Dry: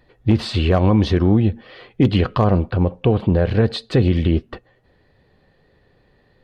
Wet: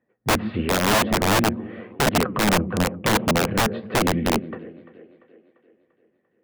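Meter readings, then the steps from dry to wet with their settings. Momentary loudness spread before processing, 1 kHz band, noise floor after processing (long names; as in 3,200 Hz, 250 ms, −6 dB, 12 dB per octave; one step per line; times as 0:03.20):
5 LU, +4.5 dB, −70 dBFS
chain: noise gate −47 dBFS, range −16 dB
in parallel at −3 dB: downward compressor 16 to 1, threshold −27 dBFS, peak gain reduction 17.5 dB
on the sum: loudspeaker in its box 160–2,200 Hz, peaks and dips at 210 Hz +9 dB, 500 Hz +3 dB, 900 Hz −4 dB
flanger 0.93 Hz, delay 3.3 ms, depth 9.9 ms, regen +76%
echo with a time of its own for lows and highs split 350 Hz, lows 139 ms, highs 344 ms, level −15 dB
wrap-around overflow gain 13 dB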